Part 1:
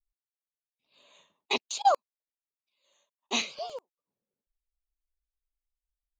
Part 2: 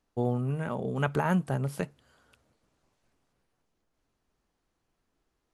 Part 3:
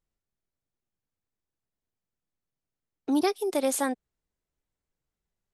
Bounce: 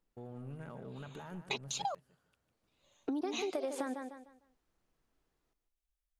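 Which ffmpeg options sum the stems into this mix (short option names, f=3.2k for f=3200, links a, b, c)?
-filter_complex "[0:a]bandreject=f=4.5k:w=12,volume=-1dB[a];[1:a]acontrast=83,alimiter=limit=-16.5dB:level=0:latency=1:release=12,aeval=exprs='clip(val(0),-1,0.0596)':c=same,volume=-11.5dB,afade=t=in:st=2.4:d=0.49:silence=0.334965,asplit=2[b][c];[c]volume=-10.5dB[d];[2:a]highpass=190,aemphasis=mode=reproduction:type=75fm,volume=2.5dB,asplit=2[e][f];[f]volume=-16dB[g];[a][e]amix=inputs=2:normalize=0,aphaser=in_gain=1:out_gain=1:delay=3.8:decay=0.31:speed=0.62:type=triangular,acompressor=threshold=-27dB:ratio=6,volume=0dB[h];[d][g]amix=inputs=2:normalize=0,aecho=0:1:151|302|453|604:1|0.29|0.0841|0.0244[i];[b][h][i]amix=inputs=3:normalize=0,acompressor=threshold=-35dB:ratio=3"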